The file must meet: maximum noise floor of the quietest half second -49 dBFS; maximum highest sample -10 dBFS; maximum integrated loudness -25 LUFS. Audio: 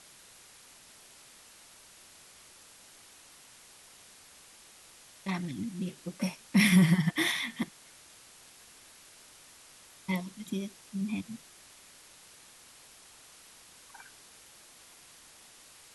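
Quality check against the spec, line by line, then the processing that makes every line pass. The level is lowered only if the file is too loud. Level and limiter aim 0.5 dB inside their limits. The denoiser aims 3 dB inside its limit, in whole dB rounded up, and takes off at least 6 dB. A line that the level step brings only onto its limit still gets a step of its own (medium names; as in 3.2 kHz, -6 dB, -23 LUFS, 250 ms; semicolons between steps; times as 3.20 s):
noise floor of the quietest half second -55 dBFS: pass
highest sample -11.5 dBFS: pass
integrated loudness -30.5 LUFS: pass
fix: none needed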